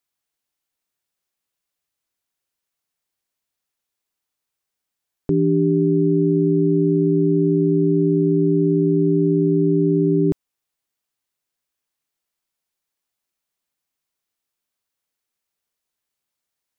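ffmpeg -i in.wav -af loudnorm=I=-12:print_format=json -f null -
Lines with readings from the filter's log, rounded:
"input_i" : "-17.9",
"input_tp" : "-9.0",
"input_lra" : "6.3",
"input_thresh" : "-28.0",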